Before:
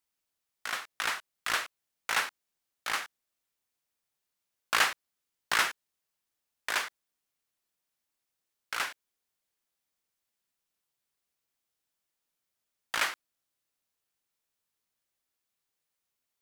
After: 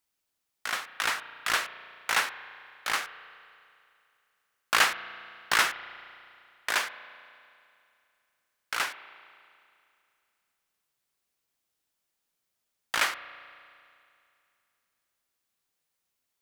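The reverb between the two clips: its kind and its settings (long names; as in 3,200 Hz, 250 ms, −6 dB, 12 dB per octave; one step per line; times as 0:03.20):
spring reverb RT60 2.5 s, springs 34 ms, chirp 65 ms, DRR 13 dB
level +3 dB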